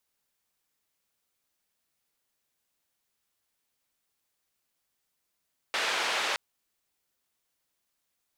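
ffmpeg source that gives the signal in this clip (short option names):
-f lavfi -i "anoisesrc=c=white:d=0.62:r=44100:seed=1,highpass=f=530,lowpass=f=3200,volume=-15.9dB"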